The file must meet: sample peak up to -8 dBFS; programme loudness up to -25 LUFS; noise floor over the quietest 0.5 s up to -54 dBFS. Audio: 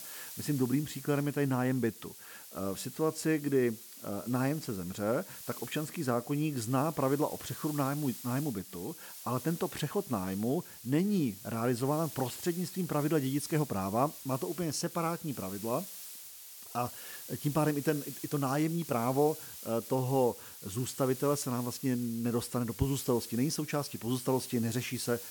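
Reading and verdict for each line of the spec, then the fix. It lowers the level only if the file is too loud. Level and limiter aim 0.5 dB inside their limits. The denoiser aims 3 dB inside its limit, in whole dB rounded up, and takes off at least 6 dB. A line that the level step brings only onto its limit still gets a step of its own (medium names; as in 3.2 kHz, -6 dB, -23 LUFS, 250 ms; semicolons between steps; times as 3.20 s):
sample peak -16.0 dBFS: pass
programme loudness -33.0 LUFS: pass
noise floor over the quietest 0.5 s -49 dBFS: fail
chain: noise reduction 8 dB, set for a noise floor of -49 dBFS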